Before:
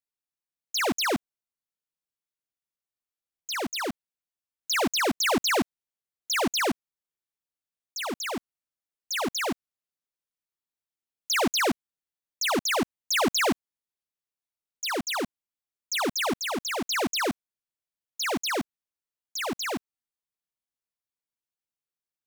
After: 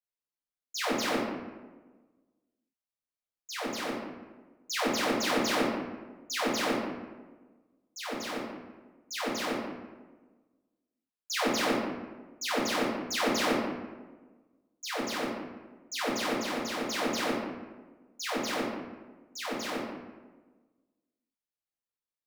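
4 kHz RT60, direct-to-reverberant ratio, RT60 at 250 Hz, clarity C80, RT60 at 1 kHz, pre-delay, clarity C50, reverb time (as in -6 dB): 0.70 s, -8.5 dB, 1.5 s, 3.0 dB, 1.2 s, 4 ms, 0.5 dB, 1.3 s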